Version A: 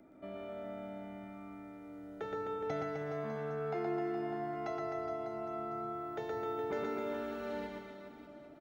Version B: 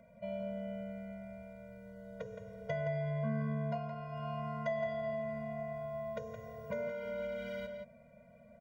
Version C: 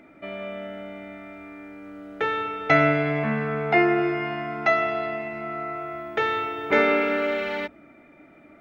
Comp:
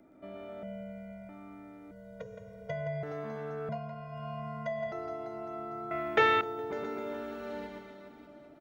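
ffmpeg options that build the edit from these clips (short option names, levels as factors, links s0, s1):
-filter_complex "[1:a]asplit=3[s0][s1][s2];[0:a]asplit=5[s3][s4][s5][s6][s7];[s3]atrim=end=0.632[s8];[s0]atrim=start=0.628:end=1.292[s9];[s4]atrim=start=1.288:end=1.912[s10];[s1]atrim=start=1.908:end=3.032[s11];[s5]atrim=start=3.028:end=3.692[s12];[s2]atrim=start=3.688:end=4.922[s13];[s6]atrim=start=4.918:end=5.912[s14];[2:a]atrim=start=5.908:end=6.412[s15];[s7]atrim=start=6.408[s16];[s8][s9]acrossfade=d=0.004:c1=hsin:c2=hsin[s17];[s17][s10]acrossfade=d=0.004:c1=hsin:c2=hsin[s18];[s18][s11]acrossfade=d=0.004:c1=hsin:c2=hsin[s19];[s19][s12]acrossfade=d=0.004:c1=hsin:c2=hsin[s20];[s20][s13]acrossfade=d=0.004:c1=hsin:c2=hsin[s21];[s21][s14]acrossfade=d=0.004:c1=hsin:c2=hsin[s22];[s22][s15]acrossfade=d=0.004:c1=hsin:c2=hsin[s23];[s23][s16]acrossfade=d=0.004:c1=hsin:c2=hsin"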